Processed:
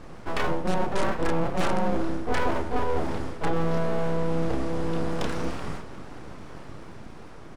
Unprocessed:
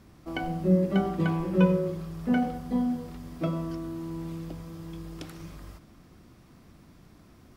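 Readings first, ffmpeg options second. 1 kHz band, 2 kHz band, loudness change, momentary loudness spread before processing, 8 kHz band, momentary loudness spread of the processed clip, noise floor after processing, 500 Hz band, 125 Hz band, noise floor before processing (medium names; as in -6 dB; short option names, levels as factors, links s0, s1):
+8.0 dB, +7.0 dB, 0.0 dB, 18 LU, no reading, 17 LU, -41 dBFS, +4.0 dB, -1.5 dB, -55 dBFS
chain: -filter_complex "[0:a]equalizer=f=940:t=o:w=2.6:g=10,asplit=2[s0][s1];[s1]adelay=30,volume=0.708[s2];[s0][s2]amix=inputs=2:normalize=0,asplit=2[s3][s4];[s4]aeval=exprs='(mod(3.76*val(0)+1,2)-1)/3.76':c=same,volume=0.531[s5];[s3][s5]amix=inputs=2:normalize=0,dynaudnorm=f=720:g=5:m=1.41,aresample=22050,aresample=44100,lowshelf=f=210:g=9.5,areverse,acompressor=threshold=0.112:ratio=6,areverse,aeval=exprs='abs(val(0))':c=same"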